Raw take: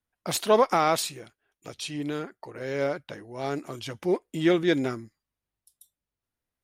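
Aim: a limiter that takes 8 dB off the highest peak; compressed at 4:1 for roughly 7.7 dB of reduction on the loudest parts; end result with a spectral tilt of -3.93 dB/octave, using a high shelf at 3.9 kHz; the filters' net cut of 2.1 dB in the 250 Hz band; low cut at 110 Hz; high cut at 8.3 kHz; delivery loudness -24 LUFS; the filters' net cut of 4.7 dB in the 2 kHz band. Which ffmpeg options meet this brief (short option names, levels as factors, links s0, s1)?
-af "highpass=110,lowpass=8300,equalizer=f=250:t=o:g=-3,equalizer=f=2000:t=o:g=-8,highshelf=f=3900:g=8,acompressor=threshold=0.0562:ratio=4,volume=3.35,alimiter=limit=0.251:level=0:latency=1"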